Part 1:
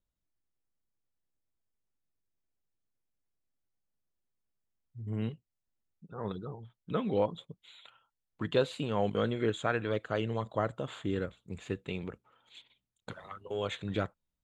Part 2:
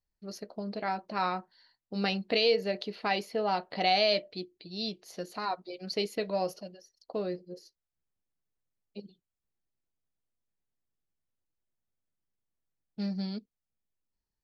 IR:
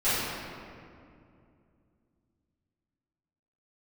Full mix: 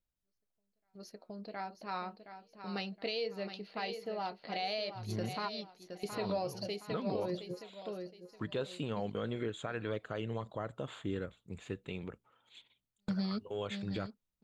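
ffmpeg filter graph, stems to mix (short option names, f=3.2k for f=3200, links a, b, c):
-filter_complex "[0:a]volume=-3.5dB,asplit=2[a][b];[1:a]agate=range=-10dB:threshold=-49dB:ratio=16:detection=peak,volume=0.5dB,asplit=2[c][d];[d]volume=-9.5dB[e];[b]apad=whole_len=636694[f];[c][f]sidechaingate=range=-51dB:threshold=-58dB:ratio=16:detection=peak[g];[e]aecho=0:1:718|1436|2154|2872|3590:1|0.32|0.102|0.0328|0.0105[h];[a][g][h]amix=inputs=3:normalize=0,alimiter=level_in=2dB:limit=-24dB:level=0:latency=1:release=133,volume=-2dB"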